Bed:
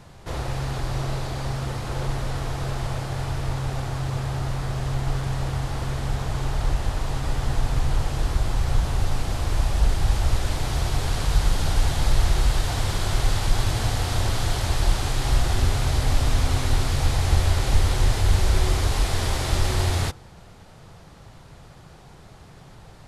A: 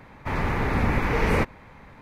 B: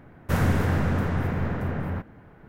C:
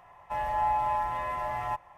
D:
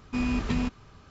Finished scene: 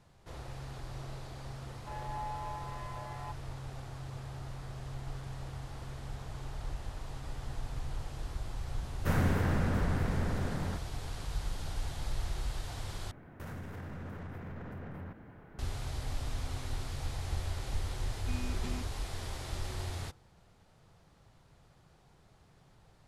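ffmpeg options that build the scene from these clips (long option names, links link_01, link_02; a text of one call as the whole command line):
ffmpeg -i bed.wav -i cue0.wav -i cue1.wav -i cue2.wav -i cue3.wav -filter_complex "[2:a]asplit=2[link_01][link_02];[0:a]volume=-16dB[link_03];[link_02]acompressor=threshold=-36dB:ratio=6:attack=0.16:release=96:knee=1:detection=peak[link_04];[4:a]aemphasis=mode=production:type=50fm[link_05];[link_03]asplit=2[link_06][link_07];[link_06]atrim=end=13.114[link_08];[link_04]atrim=end=2.48,asetpts=PTS-STARTPTS,volume=-3.5dB[link_09];[link_07]atrim=start=15.586[link_10];[3:a]atrim=end=1.97,asetpts=PTS-STARTPTS,volume=-13.5dB,afade=type=in:duration=0.004:curve=hsin,afade=type=out:start_time=1.966:duration=0.004:curve=hsin,adelay=1560[link_11];[link_01]atrim=end=2.48,asetpts=PTS-STARTPTS,volume=-6.5dB,afade=type=in:duration=0.004:curve=hsin,afade=type=out:start_time=2.476:duration=0.004:curve=hsin,adelay=8760[link_12];[link_05]atrim=end=1.1,asetpts=PTS-STARTPTS,volume=-14.5dB,afade=type=in:duration=0.004:curve=hsin,afade=type=out:start_time=1.096:duration=0.004:curve=hsin,adelay=18140[link_13];[link_08][link_09]acrossfade=duration=0.004:curve1=hsin:curve2=hsin[link_14];[link_14][link_10]acrossfade=duration=0.004:curve1=hsin:curve2=hsin[link_15];[link_15][link_11][link_12][link_13]amix=inputs=4:normalize=0" out.wav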